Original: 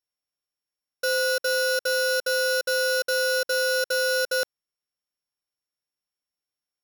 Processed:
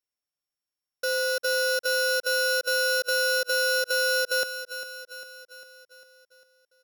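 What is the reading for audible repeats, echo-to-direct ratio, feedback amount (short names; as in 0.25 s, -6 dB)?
5, -11.5 dB, 56%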